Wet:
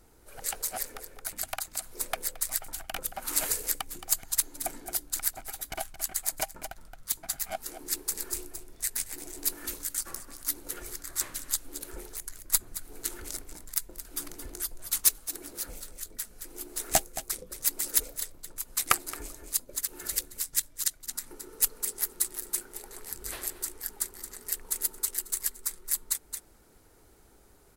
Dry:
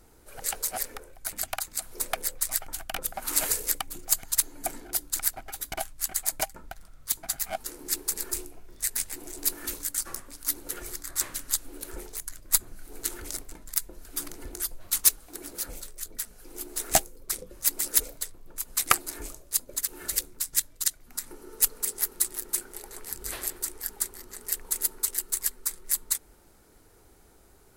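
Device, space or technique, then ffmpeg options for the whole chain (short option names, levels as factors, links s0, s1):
ducked delay: -filter_complex "[0:a]asplit=3[s0][s1][s2];[s1]adelay=221,volume=0.501[s3];[s2]apad=whole_len=1234276[s4];[s3][s4]sidechaincompress=threshold=0.00708:ratio=8:attack=7.3:release=145[s5];[s0][s5]amix=inputs=2:normalize=0,volume=0.75"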